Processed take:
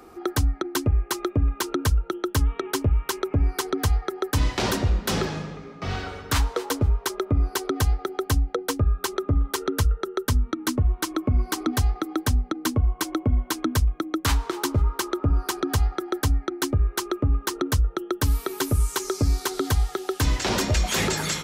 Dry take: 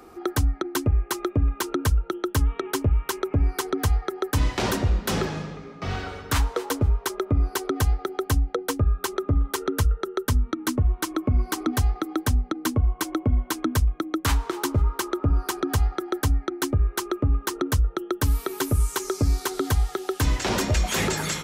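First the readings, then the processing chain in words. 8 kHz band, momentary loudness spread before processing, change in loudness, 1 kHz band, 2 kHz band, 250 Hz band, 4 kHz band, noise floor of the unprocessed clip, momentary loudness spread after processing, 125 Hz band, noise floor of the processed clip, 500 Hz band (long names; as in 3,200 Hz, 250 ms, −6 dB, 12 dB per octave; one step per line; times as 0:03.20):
+1.0 dB, 3 LU, 0.0 dB, 0.0 dB, +0.5 dB, 0.0 dB, +2.0 dB, −45 dBFS, 3 LU, 0.0 dB, −45 dBFS, 0.0 dB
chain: dynamic equaliser 4,500 Hz, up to +3 dB, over −42 dBFS, Q 1.2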